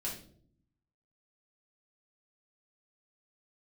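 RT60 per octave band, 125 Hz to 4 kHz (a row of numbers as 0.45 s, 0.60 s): 1.2 s, 1.0 s, 0.70 s, 0.45 s, 0.35 s, 0.40 s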